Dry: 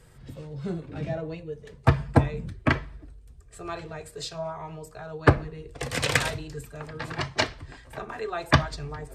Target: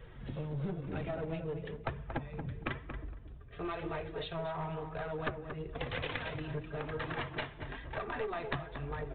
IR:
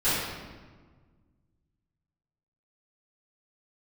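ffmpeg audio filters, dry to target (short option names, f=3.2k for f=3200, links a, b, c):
-filter_complex "[0:a]flanger=delay=1.5:depth=6.3:regen=40:speed=1:shape=triangular,acompressor=threshold=-39dB:ratio=12,aresample=8000,aeval=exprs='clip(val(0),-1,0.00708)':c=same,aresample=44100,asplit=2[a][b];[b]adelay=231,lowpass=f=1.6k:p=1,volume=-7dB,asplit=2[c][d];[d]adelay=231,lowpass=f=1.6k:p=1,volume=0.21,asplit=2[e][f];[f]adelay=231,lowpass=f=1.6k:p=1,volume=0.21[g];[a][c][e][g]amix=inputs=4:normalize=0,volume=6.5dB"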